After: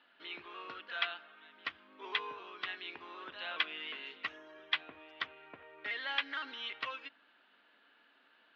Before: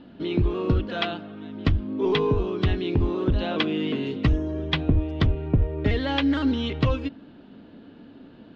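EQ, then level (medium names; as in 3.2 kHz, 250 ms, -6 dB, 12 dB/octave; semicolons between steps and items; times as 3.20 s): ladder band-pass 2.1 kHz, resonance 20%; +6.5 dB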